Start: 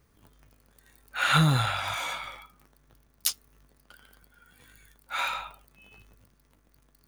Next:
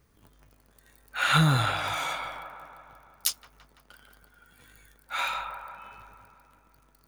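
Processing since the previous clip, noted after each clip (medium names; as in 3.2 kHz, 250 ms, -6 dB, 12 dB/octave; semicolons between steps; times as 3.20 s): feedback echo behind a band-pass 168 ms, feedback 64%, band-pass 750 Hz, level -6 dB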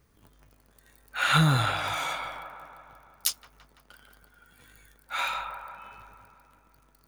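no audible change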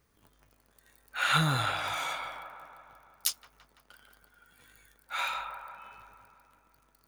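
bass shelf 330 Hz -5.5 dB; trim -2.5 dB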